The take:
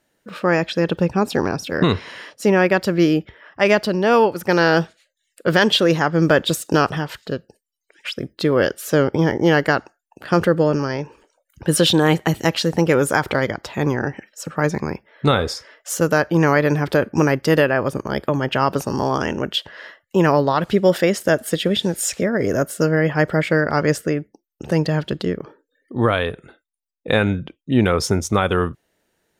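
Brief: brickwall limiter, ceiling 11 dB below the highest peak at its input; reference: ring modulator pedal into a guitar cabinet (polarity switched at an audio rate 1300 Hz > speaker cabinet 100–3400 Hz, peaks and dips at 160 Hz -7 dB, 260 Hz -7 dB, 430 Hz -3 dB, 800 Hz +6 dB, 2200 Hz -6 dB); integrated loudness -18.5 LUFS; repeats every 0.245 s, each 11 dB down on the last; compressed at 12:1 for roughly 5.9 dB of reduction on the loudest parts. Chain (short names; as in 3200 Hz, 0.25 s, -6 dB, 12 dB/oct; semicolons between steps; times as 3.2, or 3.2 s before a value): compressor 12:1, threshold -16 dBFS; limiter -17.5 dBFS; feedback echo 0.245 s, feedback 28%, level -11 dB; polarity switched at an audio rate 1300 Hz; speaker cabinet 100–3400 Hz, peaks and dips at 160 Hz -7 dB, 260 Hz -7 dB, 430 Hz -3 dB, 800 Hz +6 dB, 2200 Hz -6 dB; gain +9 dB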